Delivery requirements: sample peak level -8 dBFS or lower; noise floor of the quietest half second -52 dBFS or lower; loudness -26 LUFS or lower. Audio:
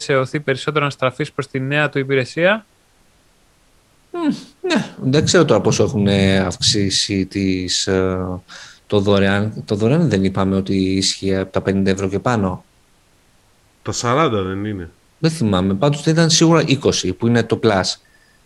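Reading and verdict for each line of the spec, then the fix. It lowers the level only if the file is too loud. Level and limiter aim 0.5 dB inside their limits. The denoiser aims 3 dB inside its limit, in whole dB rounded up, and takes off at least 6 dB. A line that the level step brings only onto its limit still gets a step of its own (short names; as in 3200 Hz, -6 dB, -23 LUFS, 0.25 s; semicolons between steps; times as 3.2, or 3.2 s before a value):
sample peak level -1.5 dBFS: fail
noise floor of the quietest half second -55 dBFS: OK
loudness -17.5 LUFS: fail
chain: gain -9 dB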